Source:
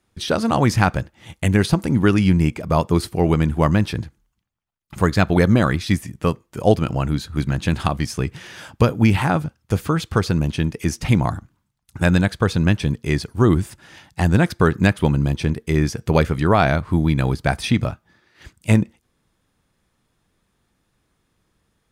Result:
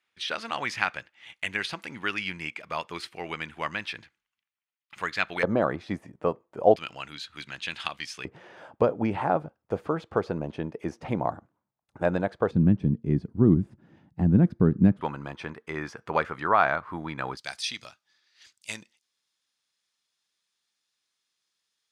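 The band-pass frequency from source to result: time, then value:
band-pass, Q 1.5
2400 Hz
from 5.43 s 640 Hz
from 6.76 s 2900 Hz
from 8.25 s 610 Hz
from 12.51 s 210 Hz
from 15.01 s 1200 Hz
from 17.37 s 4900 Hz

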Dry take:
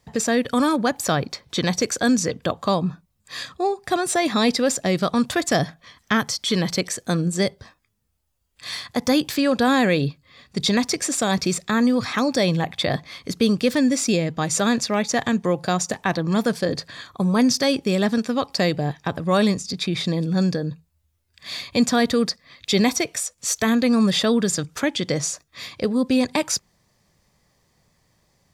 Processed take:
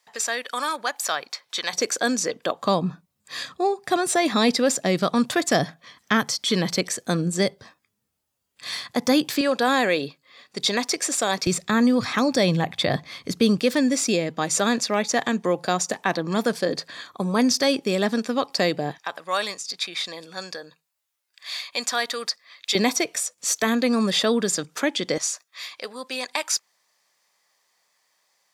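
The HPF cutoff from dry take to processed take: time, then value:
910 Hz
from 1.73 s 360 Hz
from 2.62 s 160 Hz
from 9.41 s 370 Hz
from 11.47 s 99 Hz
from 13.6 s 240 Hz
from 18.98 s 850 Hz
from 22.75 s 260 Hz
from 25.18 s 880 Hz

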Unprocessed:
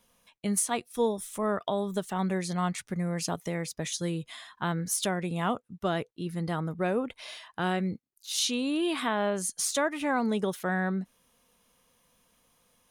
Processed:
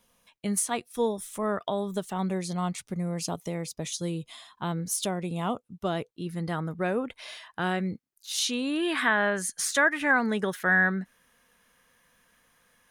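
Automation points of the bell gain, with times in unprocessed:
bell 1700 Hz 0.65 oct
1.73 s +1 dB
2.55 s -8.5 dB
5.58 s -8.5 dB
6.55 s +3 dB
8.47 s +3 dB
8.89 s +13.5 dB

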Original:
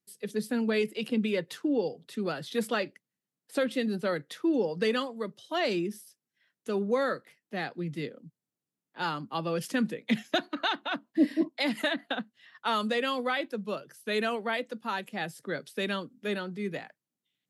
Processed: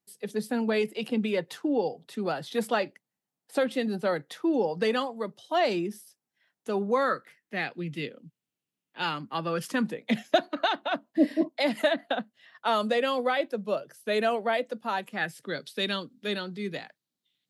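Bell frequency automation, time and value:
bell +9 dB 0.71 oct
6.82 s 790 Hz
7.76 s 2800 Hz
9.01 s 2800 Hz
10.14 s 630 Hz
14.91 s 630 Hz
15.53 s 4000 Hz

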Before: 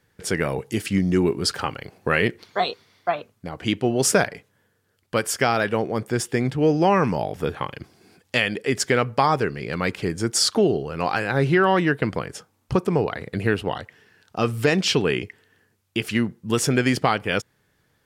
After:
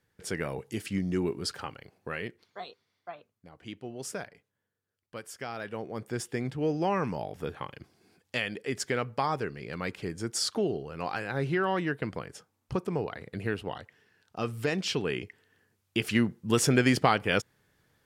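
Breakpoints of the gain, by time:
1.33 s -9.5 dB
2.64 s -19 dB
5.37 s -19 dB
6.1 s -10 dB
14.96 s -10 dB
16.11 s -3 dB

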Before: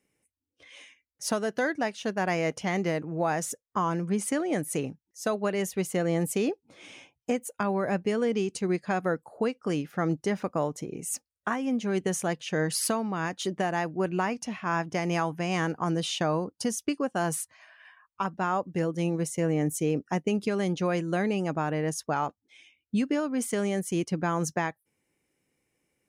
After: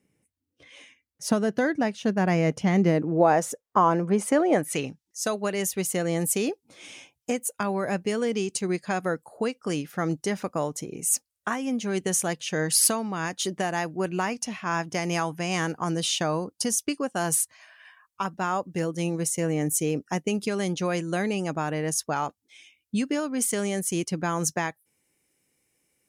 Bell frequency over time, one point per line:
bell +10 dB 2.4 oct
2.75 s 150 Hz
3.42 s 670 Hz
4.54 s 670 Hz
4.79 s 3900 Hz
5.5 s 12000 Hz

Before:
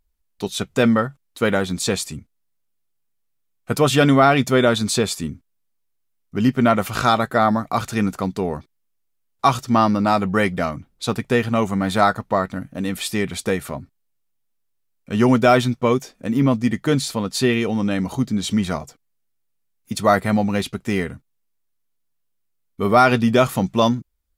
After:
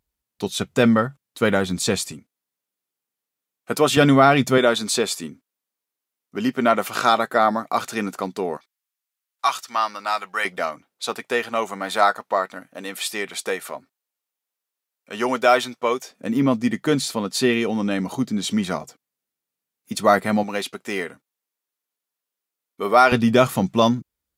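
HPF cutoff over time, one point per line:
81 Hz
from 2.12 s 250 Hz
from 3.97 s 110 Hz
from 4.58 s 300 Hz
from 8.57 s 1100 Hz
from 10.45 s 500 Hz
from 16.11 s 190 Hz
from 20.43 s 390 Hz
from 23.12 s 110 Hz

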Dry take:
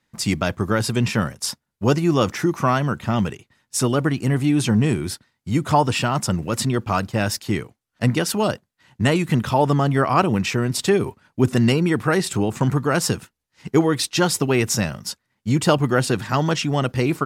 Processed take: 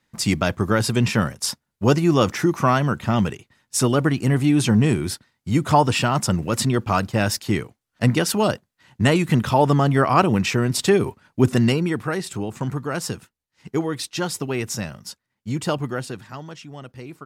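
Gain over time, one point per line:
11.48 s +1 dB
12.18 s -6.5 dB
15.82 s -6.5 dB
16.47 s -17 dB

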